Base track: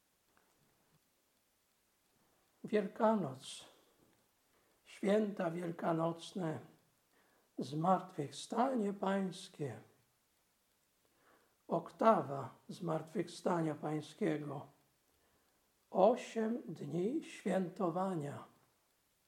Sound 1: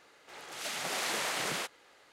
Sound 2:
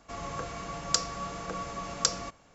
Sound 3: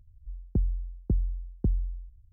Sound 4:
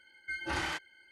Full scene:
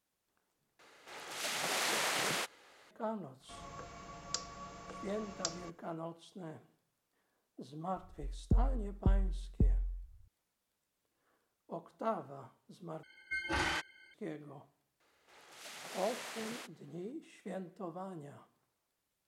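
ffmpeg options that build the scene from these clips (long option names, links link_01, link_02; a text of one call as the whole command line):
ffmpeg -i bed.wav -i cue0.wav -i cue1.wav -i cue2.wav -i cue3.wav -filter_complex "[1:a]asplit=2[link_01][link_02];[0:a]volume=-7.5dB,asplit=3[link_03][link_04][link_05];[link_03]atrim=end=0.794[link_06];[link_01]atrim=end=2.12,asetpts=PTS-STARTPTS,volume=-0.5dB[link_07];[link_04]atrim=start=2.906:end=13.034[link_08];[4:a]atrim=end=1.11[link_09];[link_05]atrim=start=14.136[link_10];[2:a]atrim=end=2.54,asetpts=PTS-STARTPTS,volume=-12dB,afade=type=in:duration=0.004:curve=hsin,afade=type=out:start_time=2.536:duration=0.004:curve=hsin,adelay=3400[link_11];[3:a]atrim=end=2.32,asetpts=PTS-STARTPTS,volume=-3.5dB,afade=type=in:duration=0.004:curve=hsin,afade=type=out:start_time=2.316:duration=0.004:curve=hsin,adelay=7960[link_12];[link_02]atrim=end=2.12,asetpts=PTS-STARTPTS,volume=-12dB,afade=type=in:duration=0.004:curve=hsin,afade=type=out:start_time=2.116:duration=0.004:curve=hsin,adelay=15000[link_13];[link_06][link_07]acrossfade=duration=0.004:curve1=hsin:curve2=hsin[link_14];[link_14][link_08]acrossfade=duration=0.004:curve1=hsin:curve2=hsin[link_15];[link_15][link_09]acrossfade=duration=0.004:curve1=hsin:curve2=hsin[link_16];[link_16][link_10]acrossfade=duration=0.004:curve1=hsin:curve2=hsin[link_17];[link_17][link_11][link_12][link_13]amix=inputs=4:normalize=0" out.wav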